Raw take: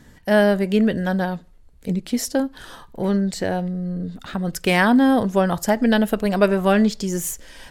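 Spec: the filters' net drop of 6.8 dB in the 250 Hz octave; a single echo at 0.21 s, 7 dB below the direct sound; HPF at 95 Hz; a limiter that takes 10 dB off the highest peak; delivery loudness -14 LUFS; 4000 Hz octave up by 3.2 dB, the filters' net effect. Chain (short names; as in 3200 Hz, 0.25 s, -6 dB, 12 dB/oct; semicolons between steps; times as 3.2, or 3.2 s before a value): HPF 95 Hz; bell 250 Hz -8.5 dB; bell 4000 Hz +4.5 dB; limiter -13 dBFS; echo 0.21 s -7 dB; gain +10.5 dB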